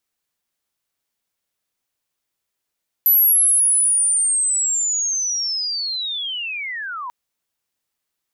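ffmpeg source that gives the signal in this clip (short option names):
-f lavfi -i "aevalsrc='pow(10,(-10.5-16*t/4.04)/20)*sin(2*PI*(12000*t-11060*t*t/(2*4.04)))':d=4.04:s=44100"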